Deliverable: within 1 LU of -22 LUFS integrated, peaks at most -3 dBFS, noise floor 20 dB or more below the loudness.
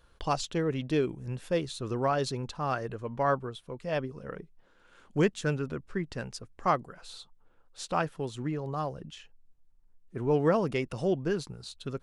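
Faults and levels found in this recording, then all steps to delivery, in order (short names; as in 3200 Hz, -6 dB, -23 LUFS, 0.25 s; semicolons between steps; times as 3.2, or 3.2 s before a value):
loudness -31.5 LUFS; peak -13.5 dBFS; loudness target -22.0 LUFS
-> gain +9.5 dB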